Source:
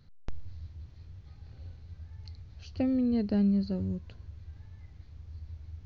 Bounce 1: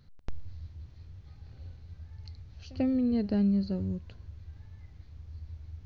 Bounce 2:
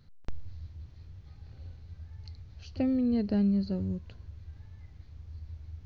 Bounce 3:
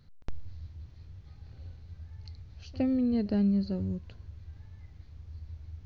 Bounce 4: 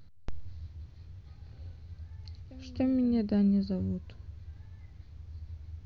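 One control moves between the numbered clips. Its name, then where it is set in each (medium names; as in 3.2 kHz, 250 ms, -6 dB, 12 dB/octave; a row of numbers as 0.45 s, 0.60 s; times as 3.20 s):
pre-echo, time: 92 ms, 38 ms, 62 ms, 290 ms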